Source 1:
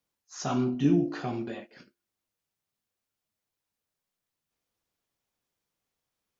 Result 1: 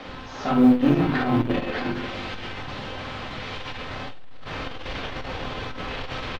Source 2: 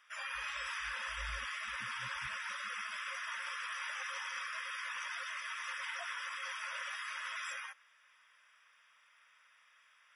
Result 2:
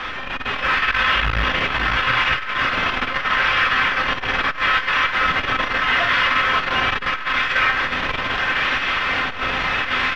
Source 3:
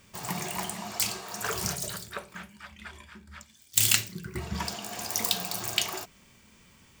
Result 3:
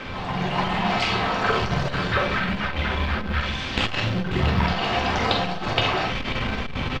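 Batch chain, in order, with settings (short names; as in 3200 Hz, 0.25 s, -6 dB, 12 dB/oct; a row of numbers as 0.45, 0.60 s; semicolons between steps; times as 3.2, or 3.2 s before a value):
zero-crossing step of -25.5 dBFS; bands offset in time highs, lows 60 ms, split 210 Hz; in parallel at -7 dB: decimation with a swept rate 10×, swing 160% 0.77 Hz; on the sum: LPF 3600 Hz 24 dB/oct; low shelf 94 Hz +7.5 dB; resonator 260 Hz, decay 0.18 s, harmonics all, mix 70%; on a send: tapped delay 44/51/71/539 ms -8/-8.5/-17/-11 dB; on the sum: AGC gain up to 6.5 dB; short-mantissa float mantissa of 6-bit; core saturation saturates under 210 Hz; normalise peaks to -6 dBFS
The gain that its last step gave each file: +3.0, +10.0, +4.5 dB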